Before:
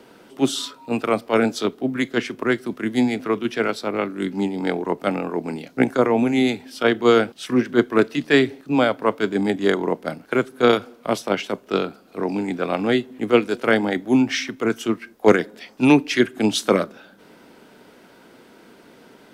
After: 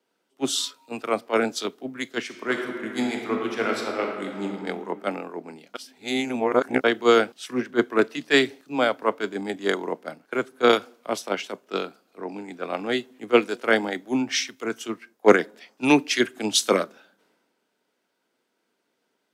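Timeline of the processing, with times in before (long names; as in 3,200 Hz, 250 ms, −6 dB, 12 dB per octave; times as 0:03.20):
0:02.25–0:04.44: thrown reverb, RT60 2.4 s, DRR 0.5 dB
0:05.74–0:06.84: reverse
whole clip: high-pass filter 380 Hz 6 dB per octave; parametric band 6,800 Hz +3 dB; multiband upward and downward expander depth 70%; level −3 dB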